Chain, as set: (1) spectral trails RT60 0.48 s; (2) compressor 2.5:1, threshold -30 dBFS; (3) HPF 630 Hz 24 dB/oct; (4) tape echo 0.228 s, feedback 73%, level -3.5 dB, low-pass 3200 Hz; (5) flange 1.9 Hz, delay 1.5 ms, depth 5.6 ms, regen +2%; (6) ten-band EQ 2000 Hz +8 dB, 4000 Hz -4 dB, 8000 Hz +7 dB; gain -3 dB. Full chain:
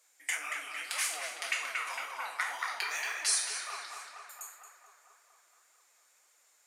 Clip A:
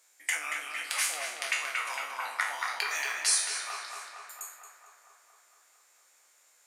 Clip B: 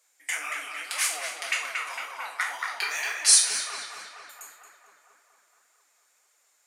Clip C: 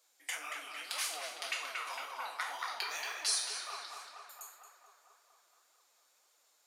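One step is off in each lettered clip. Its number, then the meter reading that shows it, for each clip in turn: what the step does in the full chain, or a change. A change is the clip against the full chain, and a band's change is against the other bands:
5, loudness change +3.0 LU; 2, mean gain reduction 3.5 dB; 6, 2 kHz band -5.0 dB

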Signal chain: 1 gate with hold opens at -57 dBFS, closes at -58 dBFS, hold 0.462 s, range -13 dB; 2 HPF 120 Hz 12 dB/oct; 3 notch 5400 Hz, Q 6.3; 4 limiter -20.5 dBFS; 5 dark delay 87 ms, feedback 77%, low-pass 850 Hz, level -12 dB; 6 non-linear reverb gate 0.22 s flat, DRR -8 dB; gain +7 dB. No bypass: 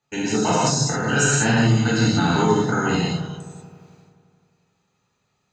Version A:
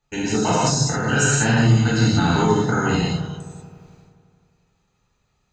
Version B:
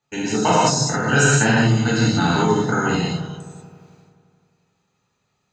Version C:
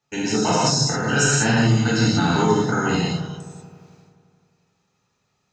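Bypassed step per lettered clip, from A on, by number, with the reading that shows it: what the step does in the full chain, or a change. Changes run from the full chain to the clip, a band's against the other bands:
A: 2, 125 Hz band +2.5 dB; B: 4, momentary loudness spread change +2 LU; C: 3, 4 kHz band +2.0 dB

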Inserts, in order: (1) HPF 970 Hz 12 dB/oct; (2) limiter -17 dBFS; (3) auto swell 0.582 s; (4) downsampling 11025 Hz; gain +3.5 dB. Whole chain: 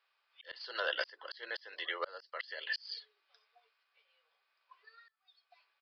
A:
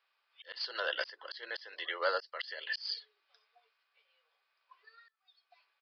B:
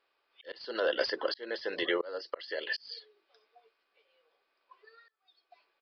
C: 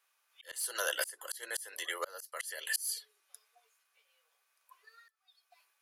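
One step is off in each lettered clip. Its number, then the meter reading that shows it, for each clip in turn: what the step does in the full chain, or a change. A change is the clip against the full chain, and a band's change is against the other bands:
2, mean gain reduction 2.5 dB; 1, 250 Hz band +17.5 dB; 4, momentary loudness spread change -4 LU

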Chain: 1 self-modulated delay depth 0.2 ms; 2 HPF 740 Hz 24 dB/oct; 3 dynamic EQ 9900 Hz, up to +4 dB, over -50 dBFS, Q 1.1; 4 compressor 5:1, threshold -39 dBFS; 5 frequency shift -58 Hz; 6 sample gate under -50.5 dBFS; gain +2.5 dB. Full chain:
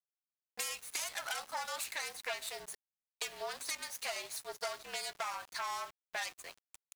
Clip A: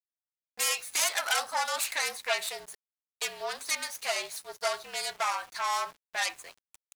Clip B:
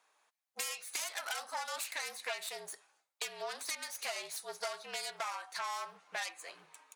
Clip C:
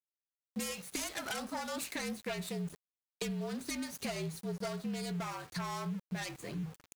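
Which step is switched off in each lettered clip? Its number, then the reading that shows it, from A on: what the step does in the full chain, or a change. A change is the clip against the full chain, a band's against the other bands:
4, mean gain reduction 6.0 dB; 6, distortion -15 dB; 2, 125 Hz band +31.5 dB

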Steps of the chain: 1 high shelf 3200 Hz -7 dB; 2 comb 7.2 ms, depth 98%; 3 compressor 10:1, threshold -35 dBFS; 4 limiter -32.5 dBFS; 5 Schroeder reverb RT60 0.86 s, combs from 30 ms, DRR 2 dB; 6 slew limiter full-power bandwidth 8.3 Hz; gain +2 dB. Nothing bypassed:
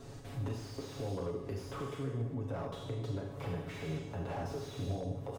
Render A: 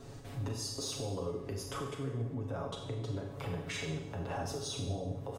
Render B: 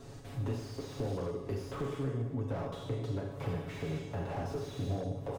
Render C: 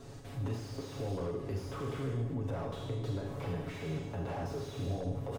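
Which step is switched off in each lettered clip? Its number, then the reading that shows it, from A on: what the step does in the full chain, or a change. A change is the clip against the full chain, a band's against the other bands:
6, distortion -9 dB; 4, 8 kHz band -2.0 dB; 3, loudness change +1.5 LU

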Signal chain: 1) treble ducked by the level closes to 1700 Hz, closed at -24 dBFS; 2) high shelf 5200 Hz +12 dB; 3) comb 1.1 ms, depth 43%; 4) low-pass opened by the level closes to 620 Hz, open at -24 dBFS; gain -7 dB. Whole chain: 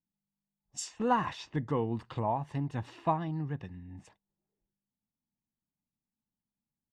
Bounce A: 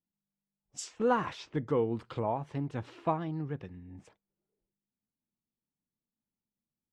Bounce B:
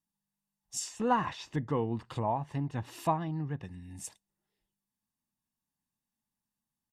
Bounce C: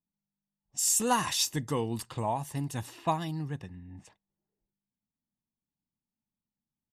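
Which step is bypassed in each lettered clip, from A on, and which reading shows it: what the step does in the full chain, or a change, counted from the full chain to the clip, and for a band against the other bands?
3, 500 Hz band +5.0 dB; 4, 8 kHz band +4.0 dB; 1, 8 kHz band +16.5 dB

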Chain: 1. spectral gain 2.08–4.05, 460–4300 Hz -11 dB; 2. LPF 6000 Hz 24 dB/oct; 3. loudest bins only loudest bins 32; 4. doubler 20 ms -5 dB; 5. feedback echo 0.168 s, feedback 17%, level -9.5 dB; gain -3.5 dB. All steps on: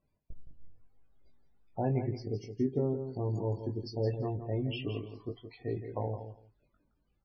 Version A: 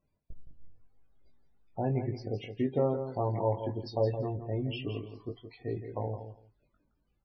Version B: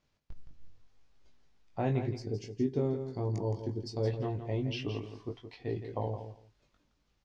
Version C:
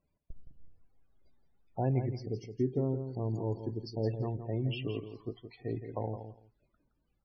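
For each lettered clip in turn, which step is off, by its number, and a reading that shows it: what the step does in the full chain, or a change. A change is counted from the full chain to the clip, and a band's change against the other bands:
1, 1 kHz band +4.5 dB; 3, 2 kHz band +2.5 dB; 4, momentary loudness spread change +1 LU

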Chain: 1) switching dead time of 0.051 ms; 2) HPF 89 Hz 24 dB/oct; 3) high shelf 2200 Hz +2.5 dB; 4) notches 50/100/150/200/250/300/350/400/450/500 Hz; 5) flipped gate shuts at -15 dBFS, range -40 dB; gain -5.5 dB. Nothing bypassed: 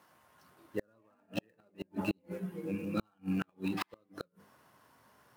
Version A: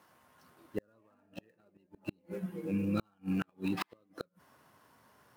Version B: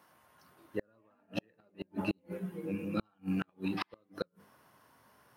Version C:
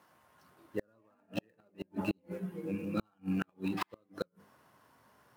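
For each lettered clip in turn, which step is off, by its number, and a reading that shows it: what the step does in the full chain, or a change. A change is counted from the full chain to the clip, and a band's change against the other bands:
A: 4, 125 Hz band +2.5 dB; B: 1, distortion -29 dB; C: 3, momentary loudness spread change -5 LU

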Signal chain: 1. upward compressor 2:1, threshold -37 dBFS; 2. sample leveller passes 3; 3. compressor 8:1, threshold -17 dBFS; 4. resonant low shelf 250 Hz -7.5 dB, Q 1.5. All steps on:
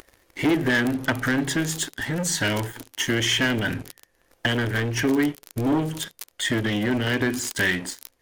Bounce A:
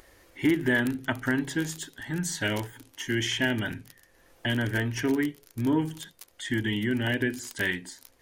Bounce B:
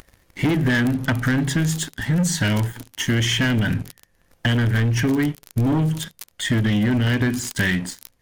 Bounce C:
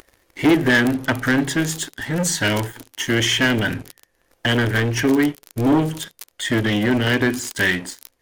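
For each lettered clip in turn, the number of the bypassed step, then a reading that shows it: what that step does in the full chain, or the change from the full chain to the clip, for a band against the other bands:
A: 2, crest factor change +1.5 dB; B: 4, 125 Hz band +9.0 dB; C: 3, mean gain reduction 3.0 dB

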